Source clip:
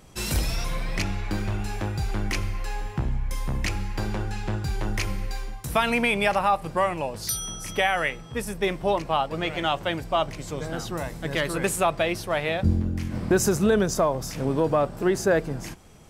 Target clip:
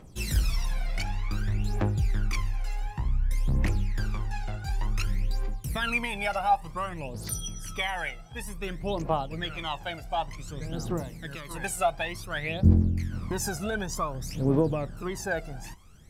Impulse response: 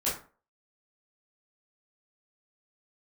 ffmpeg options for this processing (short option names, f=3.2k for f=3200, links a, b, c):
-filter_complex "[0:a]asettb=1/sr,asplit=3[a][b][c];[a]atrim=end=11.004[d];[b]atrim=start=11:end=11.51,asetpts=PTS-STARTPTS,afade=t=in:d=0.004:c=qsin,afade=t=out:st=0.506:d=0.004:c=qsin,acrossover=split=120|2400|5600[e][f][g][h];[e]acompressor=threshold=-47dB:ratio=4[i];[f]acompressor=threshold=-29dB:ratio=4[j];[g]acompressor=threshold=-40dB:ratio=4[k];[h]acompressor=threshold=-49dB:ratio=4[l];[i][j][k][l]amix=inputs=4:normalize=0[m];[c]atrim=start=11.506[n];[d][m]acrossfade=d=0.004:c1=hsin:c2=qsin[o];[o][n]acrossfade=d=0.004:c1=qsin:c2=hsin,aphaser=in_gain=1:out_gain=1:delay=1.5:decay=0.76:speed=0.55:type=triangular,volume=-9dB"